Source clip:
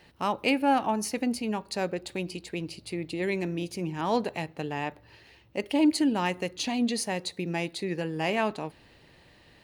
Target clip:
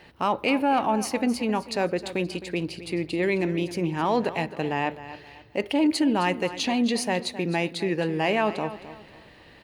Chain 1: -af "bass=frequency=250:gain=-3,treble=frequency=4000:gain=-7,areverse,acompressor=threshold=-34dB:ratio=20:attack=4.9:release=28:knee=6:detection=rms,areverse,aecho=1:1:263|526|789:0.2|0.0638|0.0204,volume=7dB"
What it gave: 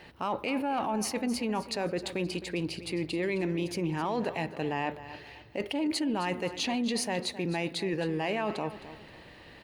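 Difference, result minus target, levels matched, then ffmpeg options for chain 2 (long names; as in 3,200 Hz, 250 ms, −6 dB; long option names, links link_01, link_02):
downward compressor: peak gain reduction +9 dB
-af "bass=frequency=250:gain=-3,treble=frequency=4000:gain=-7,areverse,acompressor=threshold=-24.5dB:ratio=20:attack=4.9:release=28:knee=6:detection=rms,areverse,aecho=1:1:263|526|789:0.2|0.0638|0.0204,volume=7dB"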